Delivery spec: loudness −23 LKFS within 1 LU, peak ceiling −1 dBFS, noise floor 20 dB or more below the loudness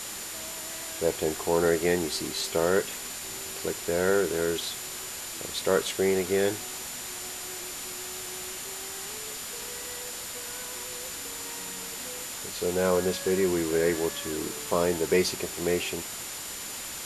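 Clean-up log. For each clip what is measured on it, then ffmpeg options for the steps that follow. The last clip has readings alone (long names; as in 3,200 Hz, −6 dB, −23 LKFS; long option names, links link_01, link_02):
interfering tone 7,100 Hz; level of the tone −42 dBFS; background noise floor −38 dBFS; target noise floor −49 dBFS; integrated loudness −29.0 LKFS; sample peak −9.0 dBFS; target loudness −23.0 LKFS
→ -af "bandreject=frequency=7100:width=30"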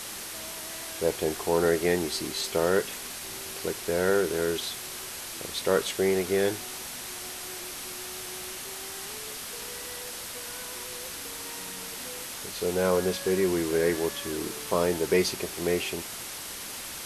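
interfering tone none found; background noise floor −39 dBFS; target noise floor −50 dBFS
→ -af "afftdn=noise_reduction=11:noise_floor=-39"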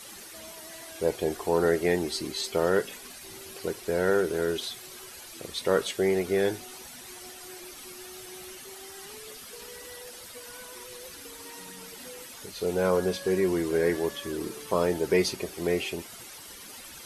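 background noise floor −45 dBFS; target noise floor −48 dBFS
→ -af "afftdn=noise_reduction=6:noise_floor=-45"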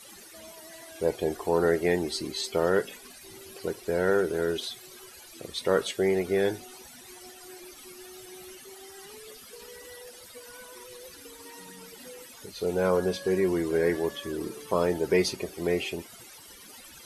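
background noise floor −49 dBFS; integrated loudness −28.0 LKFS; sample peak −9.5 dBFS; target loudness −23.0 LKFS
→ -af "volume=5dB"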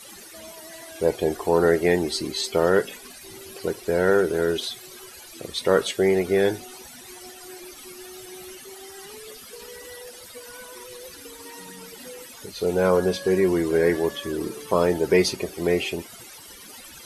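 integrated loudness −23.0 LKFS; sample peak −4.5 dBFS; background noise floor −44 dBFS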